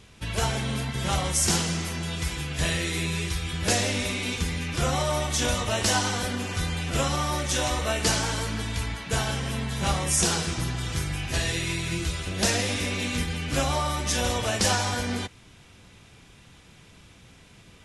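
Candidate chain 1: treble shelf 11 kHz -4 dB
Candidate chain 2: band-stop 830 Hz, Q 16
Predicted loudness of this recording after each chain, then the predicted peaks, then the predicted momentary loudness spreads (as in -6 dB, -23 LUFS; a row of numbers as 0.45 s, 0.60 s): -26.5 LUFS, -26.5 LUFS; -9.0 dBFS, -8.5 dBFS; 6 LU, 7 LU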